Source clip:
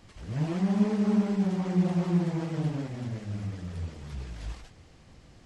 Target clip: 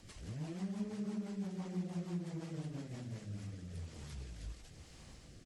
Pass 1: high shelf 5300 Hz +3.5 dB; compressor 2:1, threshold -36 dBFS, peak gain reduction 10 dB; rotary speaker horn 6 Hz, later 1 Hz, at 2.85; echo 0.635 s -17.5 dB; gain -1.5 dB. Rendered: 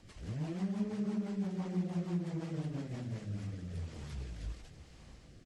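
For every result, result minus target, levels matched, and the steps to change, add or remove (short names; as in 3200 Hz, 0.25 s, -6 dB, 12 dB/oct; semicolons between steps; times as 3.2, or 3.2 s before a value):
8000 Hz band -6.5 dB; compressor: peak gain reduction -5 dB
change: high shelf 5300 Hz +12.5 dB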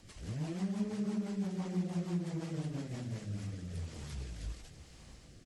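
compressor: peak gain reduction -5 dB
change: compressor 2:1, threshold -45.5 dBFS, peak gain reduction 14.5 dB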